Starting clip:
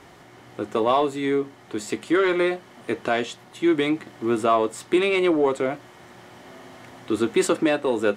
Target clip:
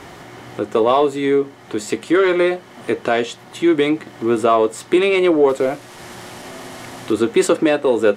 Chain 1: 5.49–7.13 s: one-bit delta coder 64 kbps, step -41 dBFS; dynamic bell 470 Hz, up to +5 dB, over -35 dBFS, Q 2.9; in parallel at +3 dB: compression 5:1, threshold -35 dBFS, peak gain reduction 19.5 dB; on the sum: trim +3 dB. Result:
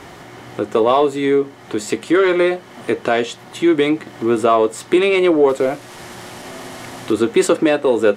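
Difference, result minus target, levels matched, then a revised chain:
compression: peak gain reduction -5 dB
5.49–7.13 s: one-bit delta coder 64 kbps, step -41 dBFS; dynamic bell 470 Hz, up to +5 dB, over -35 dBFS, Q 2.9; in parallel at +3 dB: compression 5:1, threshold -41.5 dBFS, peak gain reduction 24.5 dB; on the sum: trim +3 dB

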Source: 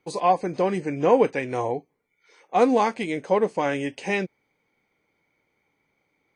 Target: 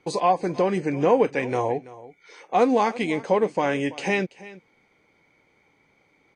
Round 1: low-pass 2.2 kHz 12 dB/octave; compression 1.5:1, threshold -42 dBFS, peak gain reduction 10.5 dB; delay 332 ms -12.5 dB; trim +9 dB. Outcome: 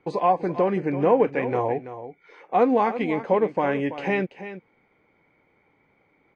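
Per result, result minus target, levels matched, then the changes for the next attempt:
8 kHz band -18.5 dB; echo-to-direct +6 dB
change: low-pass 8.4 kHz 12 dB/octave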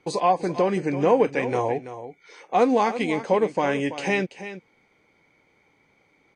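echo-to-direct +6 dB
change: delay 332 ms -18.5 dB

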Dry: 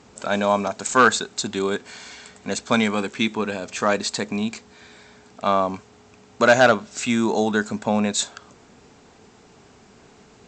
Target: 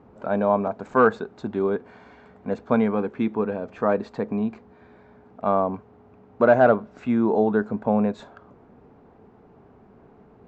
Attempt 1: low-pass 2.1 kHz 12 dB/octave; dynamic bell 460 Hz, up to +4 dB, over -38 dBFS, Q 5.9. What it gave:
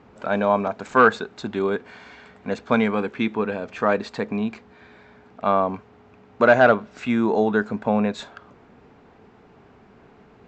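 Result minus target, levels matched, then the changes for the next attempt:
2 kHz band +6.0 dB
change: low-pass 1 kHz 12 dB/octave

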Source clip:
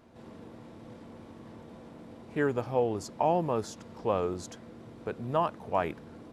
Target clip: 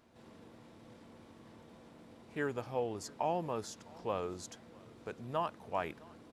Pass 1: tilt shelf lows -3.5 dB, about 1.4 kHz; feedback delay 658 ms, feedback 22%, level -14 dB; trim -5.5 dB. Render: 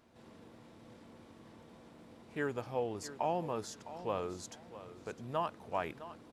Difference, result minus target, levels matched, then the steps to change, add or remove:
echo-to-direct +10 dB
change: feedback delay 658 ms, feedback 22%, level -24 dB

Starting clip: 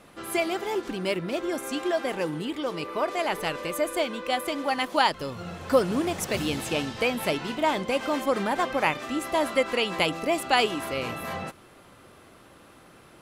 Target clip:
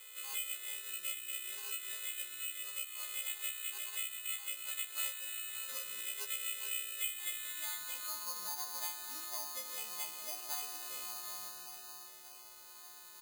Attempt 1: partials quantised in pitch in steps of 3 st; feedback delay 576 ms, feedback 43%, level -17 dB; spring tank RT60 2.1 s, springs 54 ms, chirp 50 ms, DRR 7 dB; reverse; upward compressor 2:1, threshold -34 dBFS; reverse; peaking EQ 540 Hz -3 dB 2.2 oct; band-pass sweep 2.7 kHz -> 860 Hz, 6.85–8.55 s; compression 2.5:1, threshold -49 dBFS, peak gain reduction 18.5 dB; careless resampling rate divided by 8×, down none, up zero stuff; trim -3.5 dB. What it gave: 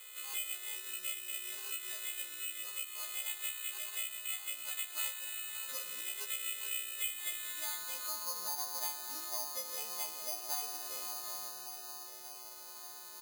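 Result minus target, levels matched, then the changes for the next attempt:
500 Hz band +3.5 dB
change: peaking EQ 540 Hz -12.5 dB 2.2 oct

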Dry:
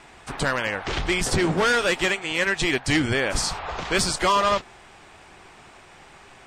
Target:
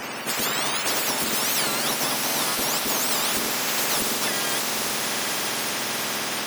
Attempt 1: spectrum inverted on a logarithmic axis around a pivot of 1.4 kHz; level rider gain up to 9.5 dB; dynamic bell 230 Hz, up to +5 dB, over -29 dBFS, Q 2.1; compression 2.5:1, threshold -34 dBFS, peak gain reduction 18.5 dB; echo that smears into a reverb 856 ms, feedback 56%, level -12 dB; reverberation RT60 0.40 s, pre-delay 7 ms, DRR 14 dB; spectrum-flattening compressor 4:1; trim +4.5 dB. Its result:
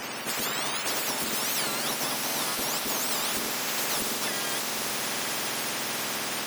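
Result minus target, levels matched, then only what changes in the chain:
compression: peak gain reduction +4.5 dB
change: compression 2.5:1, threshold -26.5 dBFS, peak gain reduction 14 dB

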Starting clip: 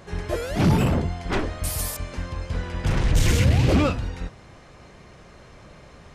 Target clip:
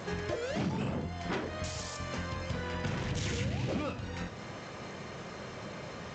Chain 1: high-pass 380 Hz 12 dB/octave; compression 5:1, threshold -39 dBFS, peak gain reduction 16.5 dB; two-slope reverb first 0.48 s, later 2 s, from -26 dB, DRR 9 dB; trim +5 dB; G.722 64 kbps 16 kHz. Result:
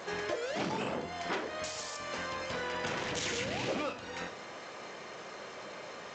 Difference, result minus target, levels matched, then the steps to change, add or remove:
125 Hz band -11.0 dB
change: high-pass 120 Hz 12 dB/octave

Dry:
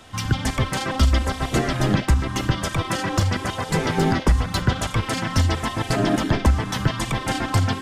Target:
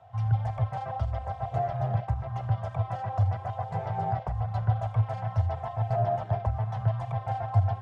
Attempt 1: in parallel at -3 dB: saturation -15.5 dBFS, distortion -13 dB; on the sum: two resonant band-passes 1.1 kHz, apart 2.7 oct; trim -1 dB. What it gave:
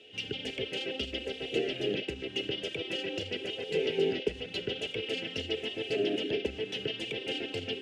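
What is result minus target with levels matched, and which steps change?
1 kHz band -15.5 dB
change: two resonant band-passes 280 Hz, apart 2.7 oct

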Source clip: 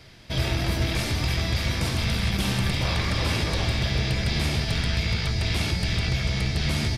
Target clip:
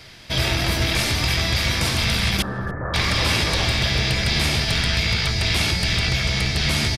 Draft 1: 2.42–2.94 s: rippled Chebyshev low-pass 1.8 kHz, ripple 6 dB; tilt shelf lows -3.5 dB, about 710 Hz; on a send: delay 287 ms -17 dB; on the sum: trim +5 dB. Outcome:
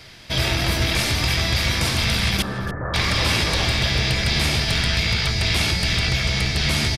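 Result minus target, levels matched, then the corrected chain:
echo-to-direct +11 dB
2.42–2.94 s: rippled Chebyshev low-pass 1.8 kHz, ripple 6 dB; tilt shelf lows -3.5 dB, about 710 Hz; on a send: delay 287 ms -28 dB; on the sum: trim +5 dB

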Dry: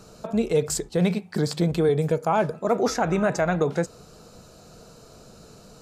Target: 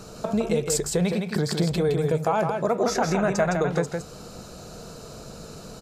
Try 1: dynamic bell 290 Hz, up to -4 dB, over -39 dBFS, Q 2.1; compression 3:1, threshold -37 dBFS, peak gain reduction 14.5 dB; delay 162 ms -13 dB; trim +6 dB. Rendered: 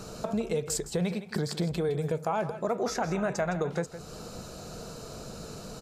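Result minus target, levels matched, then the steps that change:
compression: peak gain reduction +5.5 dB; echo-to-direct -8 dB
change: compression 3:1, threshold -28.5 dBFS, peak gain reduction 9 dB; change: delay 162 ms -5 dB

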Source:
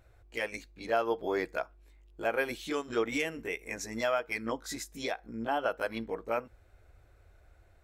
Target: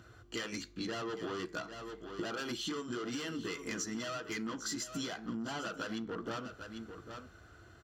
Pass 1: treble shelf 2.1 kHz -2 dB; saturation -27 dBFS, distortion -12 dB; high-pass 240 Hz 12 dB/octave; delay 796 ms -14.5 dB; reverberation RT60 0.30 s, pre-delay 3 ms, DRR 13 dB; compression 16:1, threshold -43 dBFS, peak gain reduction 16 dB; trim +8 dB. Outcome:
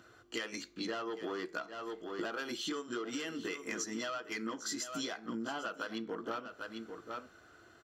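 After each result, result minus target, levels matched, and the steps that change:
125 Hz band -8.0 dB; saturation: distortion -7 dB
change: high-pass 96 Hz 12 dB/octave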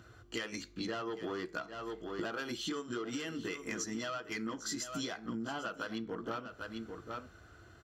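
saturation: distortion -7 dB
change: saturation -36 dBFS, distortion -5 dB

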